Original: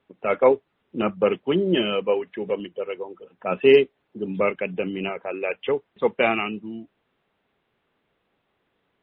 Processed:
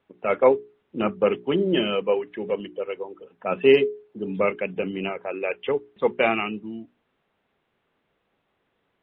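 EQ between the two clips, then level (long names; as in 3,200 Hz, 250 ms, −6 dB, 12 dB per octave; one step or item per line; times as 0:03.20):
high-frequency loss of the air 64 metres
mains-hum notches 60/120/180/240/300/360/420 Hz
0.0 dB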